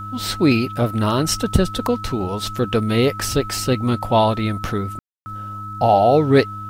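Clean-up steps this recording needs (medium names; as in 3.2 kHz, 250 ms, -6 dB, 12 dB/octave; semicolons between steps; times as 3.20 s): de-hum 103.1 Hz, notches 3; band-stop 1.3 kHz, Q 30; room tone fill 4.99–5.26 s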